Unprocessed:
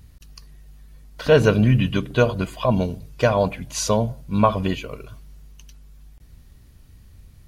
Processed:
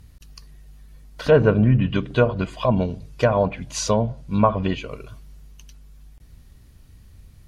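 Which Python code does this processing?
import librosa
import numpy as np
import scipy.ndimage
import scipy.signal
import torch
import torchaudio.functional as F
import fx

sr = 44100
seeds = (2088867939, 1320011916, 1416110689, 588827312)

y = fx.env_lowpass_down(x, sr, base_hz=1600.0, full_db=-13.0)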